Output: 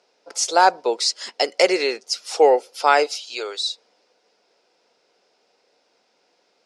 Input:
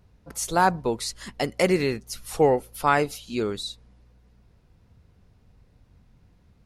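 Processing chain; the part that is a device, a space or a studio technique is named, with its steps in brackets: 3.06–3.62 s: high-pass 580 Hz 12 dB/octave; phone speaker on a table (cabinet simulation 430–7900 Hz, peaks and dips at 1.1 kHz -7 dB, 1.8 kHz -5 dB, 5.1 kHz +8 dB); trim +7.5 dB

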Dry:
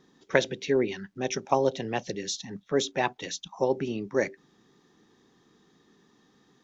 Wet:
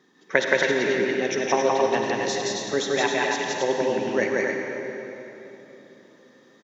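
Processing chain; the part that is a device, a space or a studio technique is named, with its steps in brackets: stadium PA (high-pass 190 Hz 12 dB/octave; peaking EQ 1.9 kHz +6 dB 0.64 oct; loudspeakers at several distances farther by 59 m -1 dB, 93 m -5 dB; reverberation RT60 3.5 s, pre-delay 45 ms, DRR 2.5 dB)

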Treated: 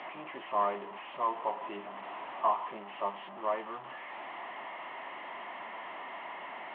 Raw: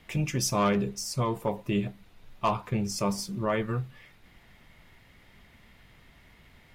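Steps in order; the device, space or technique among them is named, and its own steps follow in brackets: digital answering machine (band-pass 330–3300 Hz; one-bit delta coder 16 kbps, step -32 dBFS; cabinet simulation 430–3900 Hz, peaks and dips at 470 Hz -9 dB, 690 Hz +4 dB, 1 kHz +7 dB, 1.5 kHz -10 dB, 2.4 kHz -9 dB, 3.7 kHz -8 dB); 1.72–2.59 s: band-stop 4.7 kHz, Q 6.4; trim -2 dB

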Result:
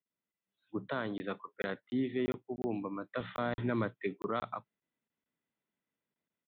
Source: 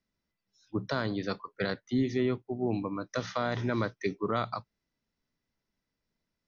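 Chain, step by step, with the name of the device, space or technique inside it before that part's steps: call with lost packets (high-pass 170 Hz 12 dB/octave; resampled via 8 kHz; level rider gain up to 5 dB; lost packets of 20 ms random); 3.20–4.03 s: bass shelf 160 Hz +11.5 dB; trim -9 dB

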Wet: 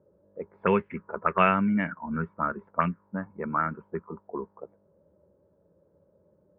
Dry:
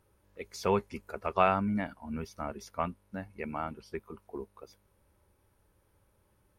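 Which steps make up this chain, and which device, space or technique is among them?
envelope filter bass rig (touch-sensitive low-pass 580–3000 Hz up, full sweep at -27 dBFS; cabinet simulation 84–2200 Hz, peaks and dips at 110 Hz -10 dB, 170 Hz +9 dB, 760 Hz -10 dB, 1.6 kHz +3 dB); trim +4 dB

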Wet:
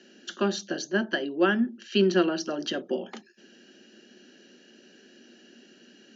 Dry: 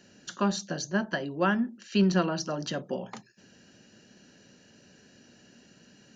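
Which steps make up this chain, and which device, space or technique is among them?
television speaker (cabinet simulation 220–6600 Hz, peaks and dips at 230 Hz +5 dB, 360 Hz +10 dB, 1 kHz -7 dB, 1.6 kHz +4 dB, 3.1 kHz +8 dB)

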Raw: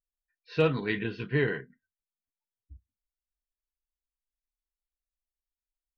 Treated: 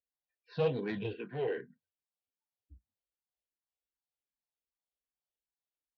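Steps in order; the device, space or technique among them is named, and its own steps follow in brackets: barber-pole phaser into a guitar amplifier (barber-pole phaser -2.6 Hz; saturation -27.5 dBFS, distortion -10 dB; cabinet simulation 84–4100 Hz, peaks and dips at 510 Hz +6 dB, 780 Hz +5 dB, 1.3 kHz -8 dB, 2 kHz -7 dB); 1.13–1.58 s: three-band isolator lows -12 dB, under 240 Hz, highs -17 dB, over 3.1 kHz

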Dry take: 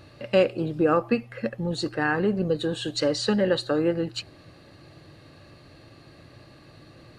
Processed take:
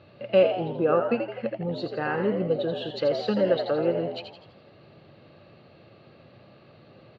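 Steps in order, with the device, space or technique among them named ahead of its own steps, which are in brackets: frequency-shifting delay pedal into a guitar cabinet (frequency-shifting echo 83 ms, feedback 47%, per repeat +88 Hz, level -7 dB; cabinet simulation 110–3600 Hz, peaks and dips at 290 Hz -6 dB, 550 Hz +4 dB, 1 kHz -3 dB, 1.8 kHz -7 dB); trim -2 dB

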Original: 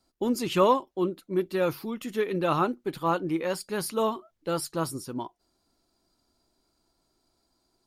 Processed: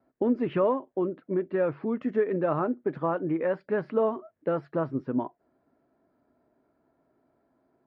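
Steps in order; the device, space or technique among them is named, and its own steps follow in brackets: 1.86–3.05 s: resonant high shelf 4.6 kHz +9.5 dB, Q 1.5; bass amplifier (compression 3:1, threshold -30 dBFS, peak gain reduction 10.5 dB; cabinet simulation 88–2100 Hz, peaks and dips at 140 Hz +6 dB, 260 Hz +8 dB, 440 Hz +6 dB, 620 Hz +9 dB, 1.7 kHz +5 dB); trim +1 dB

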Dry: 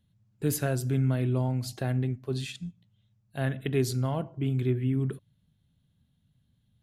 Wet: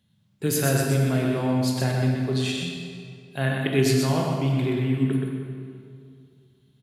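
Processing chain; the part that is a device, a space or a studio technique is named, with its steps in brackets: PA in a hall (high-pass 110 Hz; peaking EQ 3.5 kHz +4.5 dB 2.9 oct; delay 125 ms -4.5 dB; reverberation RT60 2.3 s, pre-delay 18 ms, DRR 1.5 dB); trim +3 dB

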